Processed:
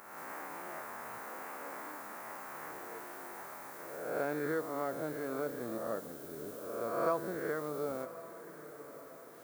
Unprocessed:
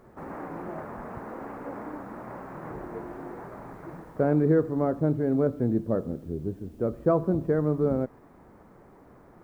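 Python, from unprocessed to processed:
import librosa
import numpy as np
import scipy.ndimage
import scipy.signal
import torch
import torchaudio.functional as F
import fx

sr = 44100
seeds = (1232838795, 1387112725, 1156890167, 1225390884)

y = fx.spec_swells(x, sr, rise_s=1.2)
y = np.diff(y, prepend=0.0)
y = fx.echo_diffused(y, sr, ms=1085, feedback_pct=47, wet_db=-14.0)
y = F.gain(torch.from_numpy(y), 10.5).numpy()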